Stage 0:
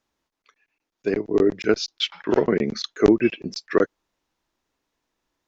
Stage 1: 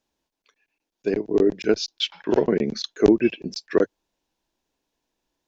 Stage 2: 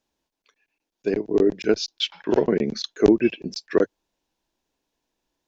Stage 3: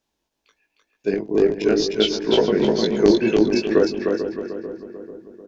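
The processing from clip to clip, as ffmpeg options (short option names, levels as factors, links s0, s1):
-af "equalizer=f=100:t=o:w=0.33:g=-9,equalizer=f=1250:t=o:w=0.33:g=-10,equalizer=f=2000:t=o:w=0.33:g=-6"
-af anull
-filter_complex "[0:a]asplit=2[s0][s1];[s1]aecho=0:1:306|612|918|1224:0.708|0.212|0.0637|0.0191[s2];[s0][s2]amix=inputs=2:normalize=0,flanger=delay=18:depth=2.1:speed=2.1,asplit=2[s3][s4];[s4]adelay=442,lowpass=f=1300:p=1,volume=0.335,asplit=2[s5][s6];[s6]adelay=442,lowpass=f=1300:p=1,volume=0.52,asplit=2[s7][s8];[s8]adelay=442,lowpass=f=1300:p=1,volume=0.52,asplit=2[s9][s10];[s10]adelay=442,lowpass=f=1300:p=1,volume=0.52,asplit=2[s11][s12];[s12]adelay=442,lowpass=f=1300:p=1,volume=0.52,asplit=2[s13][s14];[s14]adelay=442,lowpass=f=1300:p=1,volume=0.52[s15];[s5][s7][s9][s11][s13][s15]amix=inputs=6:normalize=0[s16];[s3][s16]amix=inputs=2:normalize=0,volume=1.78"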